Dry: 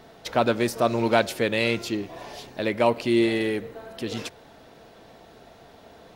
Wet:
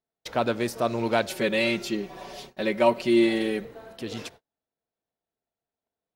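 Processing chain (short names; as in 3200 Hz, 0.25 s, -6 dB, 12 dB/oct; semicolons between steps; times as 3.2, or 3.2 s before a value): gate -42 dBFS, range -39 dB; 1.29–3.65 comb 5.3 ms, depth 95%; gain -3.5 dB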